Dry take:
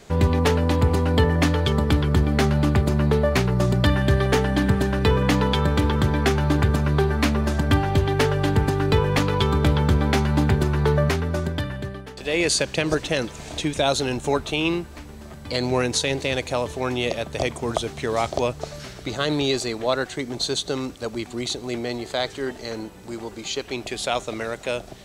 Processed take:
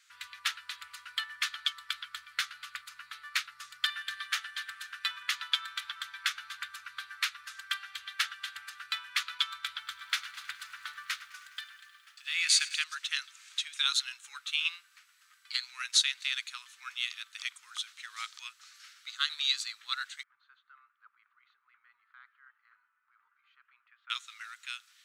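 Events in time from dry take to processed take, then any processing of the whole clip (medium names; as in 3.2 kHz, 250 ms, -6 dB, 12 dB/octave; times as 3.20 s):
9.67–12.84 s: bit-crushed delay 104 ms, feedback 80%, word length 8-bit, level -13 dB
20.23–24.10 s: four-pole ladder low-pass 1.6 kHz, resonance 35%
whole clip: elliptic high-pass 1.3 kHz, stop band 50 dB; dynamic bell 3.7 kHz, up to +5 dB, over -42 dBFS, Q 3.3; upward expansion 1.5:1, over -38 dBFS; trim -2 dB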